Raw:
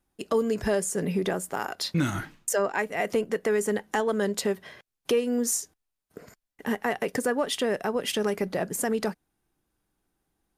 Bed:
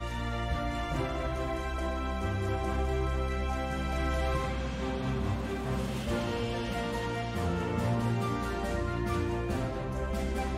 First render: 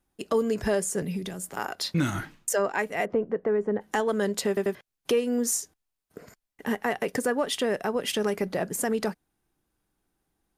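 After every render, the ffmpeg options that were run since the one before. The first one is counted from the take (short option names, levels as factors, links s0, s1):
-filter_complex "[0:a]asettb=1/sr,asplit=3[s0][s1][s2];[s0]atrim=end=1.024[s3];[s1]atrim=start=1.02:end=1.57,asetpts=PTS-STARTPTS,afade=t=in:d=0.004:c=qsin,afade=t=out:st=0.546:d=0.004:c=qsin,acrossover=split=210|3000[s4][s5][s6];[s5]acompressor=threshold=0.0112:ratio=6:attack=3.2:release=140:knee=2.83:detection=peak[s7];[s4][s7][s6]amix=inputs=3:normalize=0[s8];[s2]atrim=start=1.566[s9];[s3][s8]acrossfade=d=0.004:c1=hsin:c2=qsin[s10];[s10][s9]acrossfade=d=0.004:c1=qsin:c2=hsin,asplit=3[s11][s12][s13];[s11]afade=t=out:st=3.04:d=0.02[s14];[s12]lowpass=1100,afade=t=in:st=3.04:d=0.02,afade=t=out:st=3.8:d=0.02[s15];[s13]afade=t=in:st=3.8:d=0.02[s16];[s14][s15][s16]amix=inputs=3:normalize=0,asplit=4[s17][s18][s19][s20];[s17]atrim=end=4.572[s21];[s18]atrim=start=4.478:end=4.572[s22];[s19]atrim=start=4.478:end=4.572[s23];[s20]atrim=start=4.748[s24];[s21][s22]acrossfade=d=0.004:c1=hsin:c2=hsin[s25];[s25][s23]acrossfade=d=0.004:c1=hsin:c2=hsin[s26];[s26][s24]acrossfade=d=0.004:c1=hsin:c2=hsin"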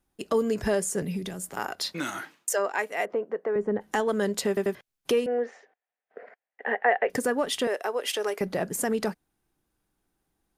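-filter_complex "[0:a]asettb=1/sr,asplit=3[s0][s1][s2];[s0]atrim=end=1.934[s3];[s1]atrim=start=1.93:end=3.56,asetpts=PTS-STARTPTS,afade=t=in:d=0.004:c=qsin,afade=t=out:st=1.626:d=0.004:c=qsin,highpass=400[s4];[s2]atrim=start=3.556[s5];[s3][s4]acrossfade=d=0.004:c1=hsin:c2=qsin[s6];[s6][s5]acrossfade=d=0.004:c1=qsin:c2=hsin,asettb=1/sr,asplit=3[s7][s8][s9];[s7]atrim=end=5.264[s10];[s8]atrim=start=5.26:end=7.1,asetpts=PTS-STARTPTS,afade=t=in:d=0.004:c=qsin,afade=t=out:st=1.836:d=0.004:c=qsin,highpass=f=320:w=0.5412,highpass=f=320:w=1.3066,equalizer=f=320:t=q:w=4:g=-10,equalizer=f=510:t=q:w=4:g=6,equalizer=f=730:t=q:w=4:g=9,equalizer=f=1100:t=q:w=4:g=-4,equalizer=f=1800:t=q:w=4:g=9,lowpass=f=2600:w=0.5412,lowpass=f=2600:w=1.3066[s11];[s9]atrim=start=7.096[s12];[s10][s11]acrossfade=d=0.004:c1=hsin:c2=qsin[s13];[s13][s12]acrossfade=d=0.004:c1=qsin:c2=hsin,asettb=1/sr,asplit=3[s14][s15][s16];[s14]atrim=end=7.674[s17];[s15]atrim=start=7.67:end=8.41,asetpts=PTS-STARTPTS,afade=t=in:d=0.004:c=qsin,afade=t=out:st=0.736:d=0.004:c=qsin,highpass=f=380:w=0.5412,highpass=f=380:w=1.3066[s18];[s16]atrim=start=8.406[s19];[s17][s18]acrossfade=d=0.004:c1=hsin:c2=qsin[s20];[s20][s19]acrossfade=d=0.004:c1=qsin:c2=hsin"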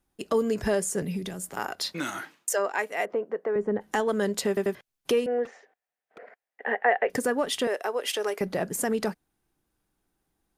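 -filter_complex "[0:a]asettb=1/sr,asplit=3[s0][s1][s2];[s0]atrim=end=5.454[s3];[s1]atrim=start=5.45:end=6.19,asetpts=PTS-STARTPTS,afade=t=in:d=0.004:c=qsin,afade=t=out:st=0.736:d=0.004:c=qsin,aeval=exprs='0.0119*(abs(mod(val(0)/0.0119+3,4)-2)-1)':c=same[s4];[s2]atrim=start=6.186[s5];[s3][s4]acrossfade=d=0.004:c1=hsin:c2=qsin[s6];[s6][s5]acrossfade=d=0.004:c1=qsin:c2=hsin"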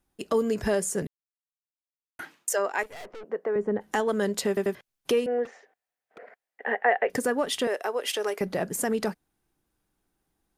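-filter_complex "[0:a]asettb=1/sr,asplit=3[s0][s1][s2];[s0]atrim=end=2.834[s3];[s1]atrim=start=2.83:end=3.24,asetpts=PTS-STARTPTS,afade=t=in:d=0.004:c=qsin,afade=t=out:st=0.406:d=0.004:c=qsin,aeval=exprs='(tanh(100*val(0)+0.65)-tanh(0.65))/100':c=same[s4];[s2]atrim=start=3.236[s5];[s3][s4]acrossfade=d=0.004:c1=hsin:c2=qsin[s6];[s6][s5]acrossfade=d=0.004:c1=qsin:c2=hsin,asplit=3[s7][s8][s9];[s7]atrim=end=1.07,asetpts=PTS-STARTPTS,afade=t=out:st=1.066:d=0.004:c=hsin[s10];[s8]atrim=start=1.07:end=2.19,asetpts=PTS-STARTPTS,volume=0[s11];[s9]atrim=start=2.19,asetpts=PTS-STARTPTS,afade=t=in:d=0.004:c=hsin[s12];[s10][s11][s12]concat=n=3:v=0:a=1"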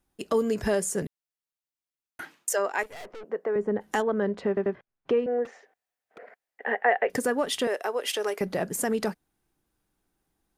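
-filter_complex "[0:a]asettb=1/sr,asplit=3[s0][s1][s2];[s0]atrim=end=4.024[s3];[s1]atrim=start=4.02:end=5.45,asetpts=PTS-STARTPTS,afade=t=in:d=0.004:c=qsin,afade=t=out:st=1.426:d=0.004:c=qsin,lowpass=1700[s4];[s2]atrim=start=5.446[s5];[s3][s4]acrossfade=d=0.004:c1=hsin:c2=qsin[s6];[s6][s5]acrossfade=d=0.004:c1=qsin:c2=hsin"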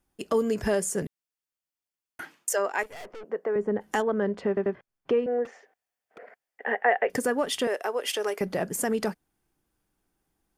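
-af "bandreject=f=3900:w=14"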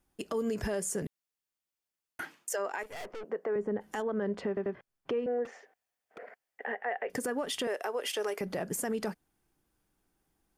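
-af "acompressor=threshold=0.0447:ratio=2.5,alimiter=level_in=1.06:limit=0.0631:level=0:latency=1:release=85,volume=0.944"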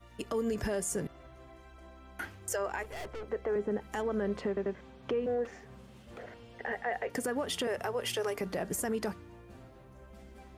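-filter_complex "[1:a]volume=0.1[s0];[0:a][s0]amix=inputs=2:normalize=0"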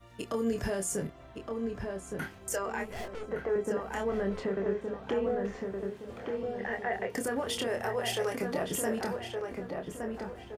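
-filter_complex "[0:a]asplit=2[s0][s1];[s1]adelay=26,volume=0.531[s2];[s0][s2]amix=inputs=2:normalize=0,asplit=2[s3][s4];[s4]adelay=1167,lowpass=f=2000:p=1,volume=0.631,asplit=2[s5][s6];[s6]adelay=1167,lowpass=f=2000:p=1,volume=0.41,asplit=2[s7][s8];[s8]adelay=1167,lowpass=f=2000:p=1,volume=0.41,asplit=2[s9][s10];[s10]adelay=1167,lowpass=f=2000:p=1,volume=0.41,asplit=2[s11][s12];[s12]adelay=1167,lowpass=f=2000:p=1,volume=0.41[s13];[s3][s5][s7][s9][s11][s13]amix=inputs=6:normalize=0"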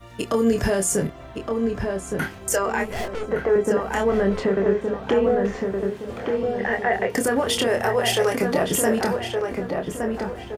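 -af "volume=3.55"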